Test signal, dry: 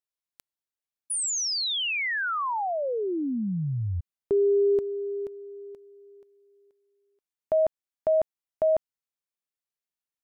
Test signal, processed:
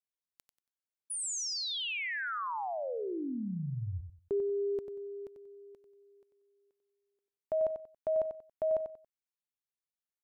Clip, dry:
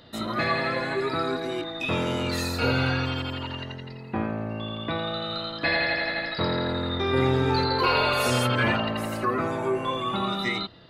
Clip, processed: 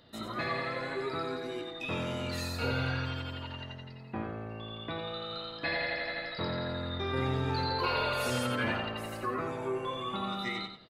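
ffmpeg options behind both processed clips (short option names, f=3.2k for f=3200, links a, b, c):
-af "aecho=1:1:93|186|279:0.398|0.104|0.0269,volume=-8.5dB"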